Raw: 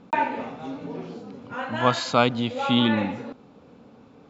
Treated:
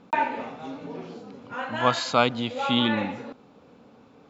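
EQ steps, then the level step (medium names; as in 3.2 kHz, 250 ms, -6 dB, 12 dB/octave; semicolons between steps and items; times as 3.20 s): bass shelf 350 Hz -5 dB; 0.0 dB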